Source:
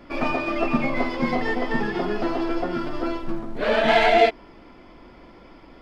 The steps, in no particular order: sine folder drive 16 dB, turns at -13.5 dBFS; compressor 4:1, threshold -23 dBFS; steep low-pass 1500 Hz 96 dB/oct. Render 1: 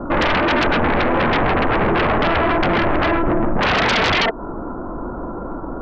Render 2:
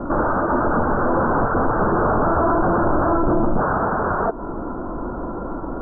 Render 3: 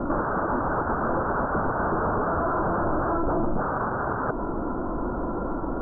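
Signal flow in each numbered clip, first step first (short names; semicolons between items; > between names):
steep low-pass > compressor > sine folder; compressor > sine folder > steep low-pass; sine folder > steep low-pass > compressor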